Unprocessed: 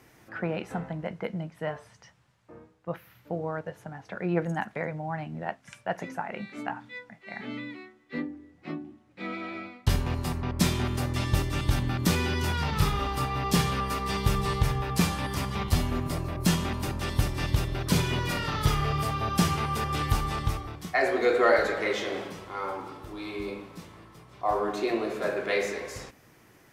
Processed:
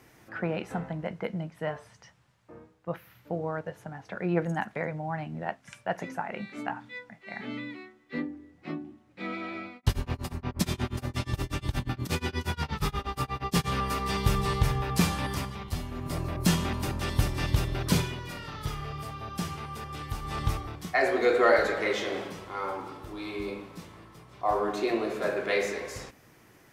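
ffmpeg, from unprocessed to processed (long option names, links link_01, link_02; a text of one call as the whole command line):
ffmpeg -i in.wav -filter_complex "[0:a]asplit=3[link_01][link_02][link_03];[link_01]afade=type=out:start_time=9.75:duration=0.02[link_04];[link_02]tremolo=f=8.4:d=0.97,afade=type=in:start_time=9.75:duration=0.02,afade=type=out:start_time=13.68:duration=0.02[link_05];[link_03]afade=type=in:start_time=13.68:duration=0.02[link_06];[link_04][link_05][link_06]amix=inputs=3:normalize=0,asplit=5[link_07][link_08][link_09][link_10][link_11];[link_07]atrim=end=15.57,asetpts=PTS-STARTPTS,afade=type=out:start_time=15.31:duration=0.26:silence=0.375837[link_12];[link_08]atrim=start=15.57:end=15.95,asetpts=PTS-STARTPTS,volume=-8.5dB[link_13];[link_09]atrim=start=15.95:end=18.15,asetpts=PTS-STARTPTS,afade=type=in:duration=0.26:silence=0.375837,afade=type=out:start_time=1.98:duration=0.22:silence=0.334965[link_14];[link_10]atrim=start=18.15:end=20.21,asetpts=PTS-STARTPTS,volume=-9.5dB[link_15];[link_11]atrim=start=20.21,asetpts=PTS-STARTPTS,afade=type=in:duration=0.22:silence=0.334965[link_16];[link_12][link_13][link_14][link_15][link_16]concat=n=5:v=0:a=1" out.wav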